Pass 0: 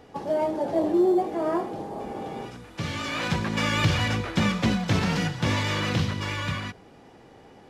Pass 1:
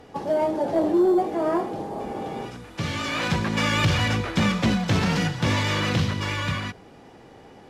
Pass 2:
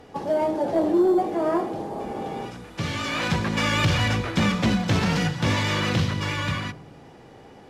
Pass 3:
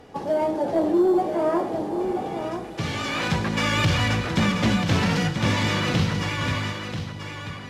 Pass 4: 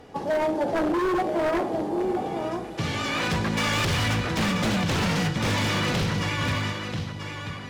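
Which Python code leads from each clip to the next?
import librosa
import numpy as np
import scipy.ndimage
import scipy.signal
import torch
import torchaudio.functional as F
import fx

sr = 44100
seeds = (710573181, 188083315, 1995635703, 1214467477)

y1 = fx.fold_sine(x, sr, drive_db=3, ceiling_db=-9.5)
y1 = y1 * 10.0 ** (-4.0 / 20.0)
y2 = fx.echo_filtered(y1, sr, ms=72, feedback_pct=76, hz=820.0, wet_db=-15.0)
y3 = y2 + 10.0 ** (-8.0 / 20.0) * np.pad(y2, (int(986 * sr / 1000.0), 0))[:len(y2)]
y4 = 10.0 ** (-19.0 / 20.0) * (np.abs((y3 / 10.0 ** (-19.0 / 20.0) + 3.0) % 4.0 - 2.0) - 1.0)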